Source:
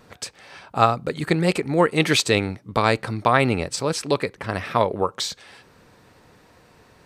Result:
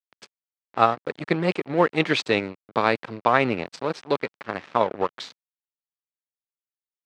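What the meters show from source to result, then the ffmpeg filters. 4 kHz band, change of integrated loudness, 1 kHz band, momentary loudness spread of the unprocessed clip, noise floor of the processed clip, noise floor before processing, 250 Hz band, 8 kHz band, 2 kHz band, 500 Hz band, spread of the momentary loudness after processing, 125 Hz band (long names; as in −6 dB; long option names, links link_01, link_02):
−6.0 dB, −2.5 dB, −1.5 dB, 11 LU, below −85 dBFS, −55 dBFS, −3.0 dB, −17.0 dB, −2.0 dB, −2.0 dB, 10 LU, −7.5 dB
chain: -af "aeval=exprs='sgn(val(0))*max(abs(val(0))-0.0335,0)':channel_layout=same,highpass=160,lowpass=3400"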